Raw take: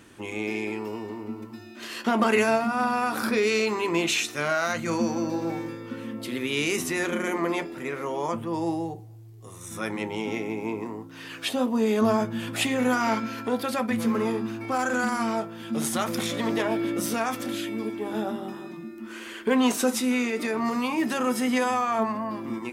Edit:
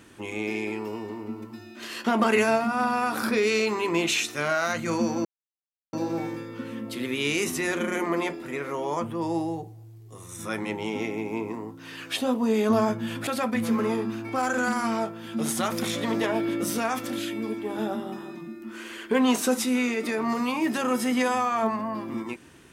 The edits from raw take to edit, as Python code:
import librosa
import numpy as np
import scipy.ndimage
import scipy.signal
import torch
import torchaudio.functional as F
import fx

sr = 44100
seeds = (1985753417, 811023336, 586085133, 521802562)

y = fx.edit(x, sr, fx.insert_silence(at_s=5.25, length_s=0.68),
    fx.cut(start_s=12.59, length_s=1.04), tone=tone)